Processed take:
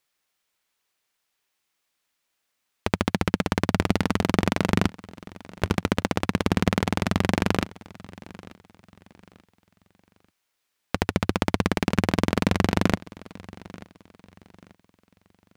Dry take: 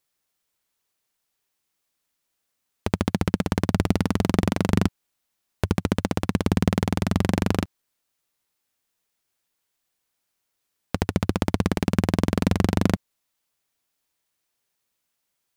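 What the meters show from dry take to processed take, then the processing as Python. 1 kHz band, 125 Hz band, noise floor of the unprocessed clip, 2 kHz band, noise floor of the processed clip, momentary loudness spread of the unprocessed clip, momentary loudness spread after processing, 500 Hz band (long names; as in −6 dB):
+2.5 dB, −2.5 dB, −78 dBFS, +4.5 dB, −78 dBFS, 5 LU, 20 LU, +0.5 dB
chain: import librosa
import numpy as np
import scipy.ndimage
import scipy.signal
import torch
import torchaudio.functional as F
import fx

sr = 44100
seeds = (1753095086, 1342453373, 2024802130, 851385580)

p1 = fx.curve_eq(x, sr, hz=(120.0, 2300.0, 12000.0), db=(0, 8, 1))
p2 = p1 + fx.echo_feedback(p1, sr, ms=886, feedback_pct=33, wet_db=-20.5, dry=0)
y = p2 * librosa.db_to_amplitude(-3.0)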